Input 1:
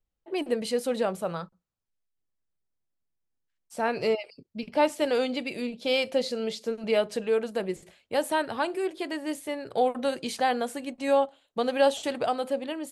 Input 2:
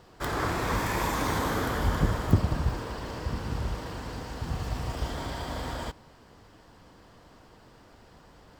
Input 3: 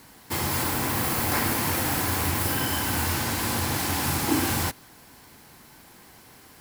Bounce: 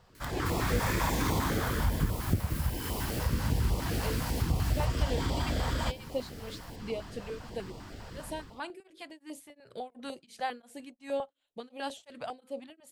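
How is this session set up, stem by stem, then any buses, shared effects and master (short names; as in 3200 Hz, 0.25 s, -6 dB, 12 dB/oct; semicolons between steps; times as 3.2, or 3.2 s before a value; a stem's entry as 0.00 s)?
-6.5 dB, 0.00 s, no bus, no send, tremolo triangle 2.8 Hz, depth 100%
-7.0 dB, 0.00 s, bus A, no send, AGC gain up to 16 dB; low shelf 340 Hz +3 dB
-4.5 dB, 0.15 s, bus A, no send, compressor, threshold -28 dBFS, peak gain reduction 9.5 dB
bus A: 0.0 dB, compressor 2:1, threshold -30 dBFS, peak gain reduction 9.5 dB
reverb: off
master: stepped notch 10 Hz 310–1600 Hz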